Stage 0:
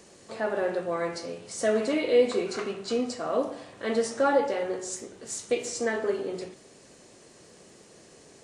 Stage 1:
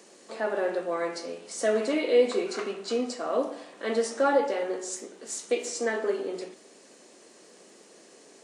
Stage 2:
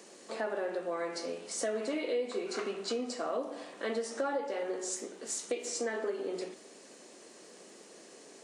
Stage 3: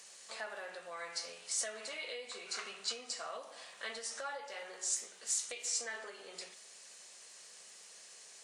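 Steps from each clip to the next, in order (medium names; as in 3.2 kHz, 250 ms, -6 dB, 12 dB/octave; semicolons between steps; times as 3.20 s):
high-pass 220 Hz 24 dB/octave
compression 4:1, threshold -32 dBFS, peak gain reduction 13.5 dB
amplifier tone stack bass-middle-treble 10-0-10; trim +3.5 dB; Opus 128 kbps 48 kHz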